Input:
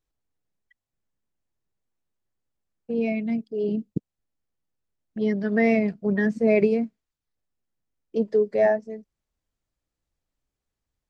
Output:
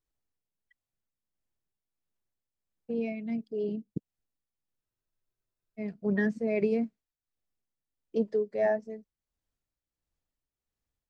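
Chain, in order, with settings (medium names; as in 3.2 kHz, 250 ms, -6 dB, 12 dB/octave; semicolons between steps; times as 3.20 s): tremolo triangle 1.5 Hz, depth 60%; spectral freeze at 4.83 s, 0.96 s; trim -3.5 dB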